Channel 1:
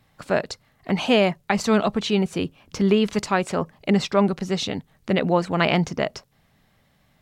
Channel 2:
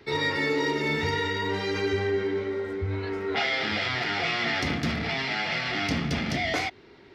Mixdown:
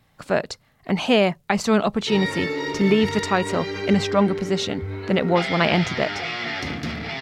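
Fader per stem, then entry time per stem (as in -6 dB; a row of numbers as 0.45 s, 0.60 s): +0.5 dB, -1.0 dB; 0.00 s, 2.00 s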